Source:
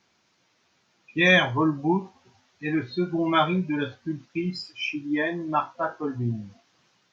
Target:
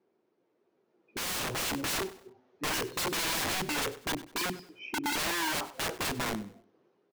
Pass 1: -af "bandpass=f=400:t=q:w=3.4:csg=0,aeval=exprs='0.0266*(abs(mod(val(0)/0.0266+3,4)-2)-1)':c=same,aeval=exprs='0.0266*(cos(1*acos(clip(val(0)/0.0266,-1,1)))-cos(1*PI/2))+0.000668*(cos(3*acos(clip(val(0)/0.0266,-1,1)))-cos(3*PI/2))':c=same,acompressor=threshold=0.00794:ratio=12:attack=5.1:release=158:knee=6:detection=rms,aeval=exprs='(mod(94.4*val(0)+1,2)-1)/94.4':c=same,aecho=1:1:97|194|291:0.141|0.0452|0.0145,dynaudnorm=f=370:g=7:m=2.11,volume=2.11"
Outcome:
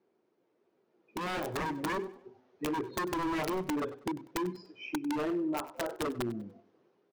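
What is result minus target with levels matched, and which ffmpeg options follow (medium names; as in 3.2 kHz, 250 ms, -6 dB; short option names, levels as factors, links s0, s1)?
compression: peak gain reduction +7 dB
-af "bandpass=f=400:t=q:w=3.4:csg=0,aeval=exprs='0.0266*(abs(mod(val(0)/0.0266+3,4)-2)-1)':c=same,aeval=exprs='0.0266*(cos(1*acos(clip(val(0)/0.0266,-1,1)))-cos(1*PI/2))+0.000668*(cos(3*acos(clip(val(0)/0.0266,-1,1)))-cos(3*PI/2))':c=same,acompressor=threshold=0.0224:ratio=12:attack=5.1:release=158:knee=6:detection=rms,aeval=exprs='(mod(94.4*val(0)+1,2)-1)/94.4':c=same,aecho=1:1:97|194|291:0.141|0.0452|0.0145,dynaudnorm=f=370:g=7:m=2.11,volume=2.11"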